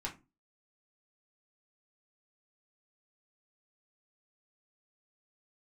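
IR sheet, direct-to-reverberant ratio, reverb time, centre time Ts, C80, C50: -3.5 dB, 0.30 s, 17 ms, 21.0 dB, 13.5 dB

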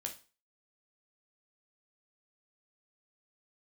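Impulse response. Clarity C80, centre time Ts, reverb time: 17.5 dB, 12 ms, 0.35 s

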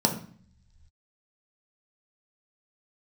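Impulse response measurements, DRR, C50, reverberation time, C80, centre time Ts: 1.5 dB, 9.5 dB, 0.50 s, 13.5 dB, 16 ms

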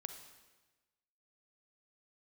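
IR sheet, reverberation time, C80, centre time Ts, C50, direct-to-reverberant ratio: 1.2 s, 9.5 dB, 22 ms, 7.5 dB, 7.0 dB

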